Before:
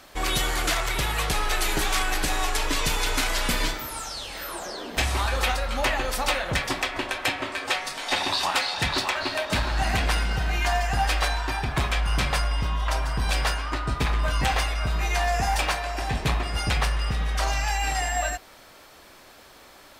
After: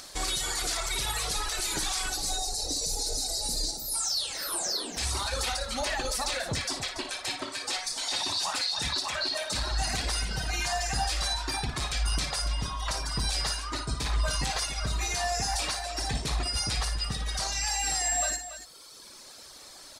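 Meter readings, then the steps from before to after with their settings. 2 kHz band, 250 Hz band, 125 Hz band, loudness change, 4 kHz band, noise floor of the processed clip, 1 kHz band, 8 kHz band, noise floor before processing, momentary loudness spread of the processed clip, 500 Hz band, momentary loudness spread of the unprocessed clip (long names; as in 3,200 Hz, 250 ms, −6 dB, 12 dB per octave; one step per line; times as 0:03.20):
−8.0 dB, −7.5 dB, −7.0 dB, −3.5 dB, −1.0 dB, −48 dBFS, −7.5 dB, +3.0 dB, −50 dBFS, 5 LU, −6.5 dB, 4 LU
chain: reverb reduction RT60 1.7 s
gain on a spectral selection 0:02.09–0:03.94, 880–3,700 Hz −19 dB
flat-topped bell 6,400 Hz +12.5 dB
brickwall limiter −19.5 dBFS, peak gain reduction 16 dB
upward compression, threshold −44 dBFS
on a send: multi-tap delay 57/284 ms −8/−11 dB
on the sum: level −2 dB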